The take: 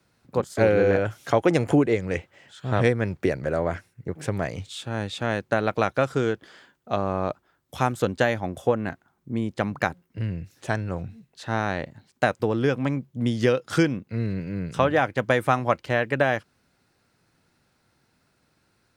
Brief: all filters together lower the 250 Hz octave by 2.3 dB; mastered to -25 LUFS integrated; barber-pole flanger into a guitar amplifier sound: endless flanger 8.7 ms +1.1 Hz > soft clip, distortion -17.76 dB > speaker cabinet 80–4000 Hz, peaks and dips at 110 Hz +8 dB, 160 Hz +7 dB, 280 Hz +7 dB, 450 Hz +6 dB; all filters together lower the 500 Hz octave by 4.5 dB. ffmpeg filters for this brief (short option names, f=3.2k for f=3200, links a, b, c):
-filter_complex "[0:a]equalizer=f=250:t=o:g=-7.5,equalizer=f=500:t=o:g=-7.5,asplit=2[a][b];[b]adelay=8.7,afreqshift=1.1[c];[a][c]amix=inputs=2:normalize=1,asoftclip=threshold=-19dB,highpass=80,equalizer=f=110:t=q:w=4:g=8,equalizer=f=160:t=q:w=4:g=7,equalizer=f=280:t=q:w=4:g=7,equalizer=f=450:t=q:w=4:g=6,lowpass=f=4k:w=0.5412,lowpass=f=4k:w=1.3066,volume=5.5dB"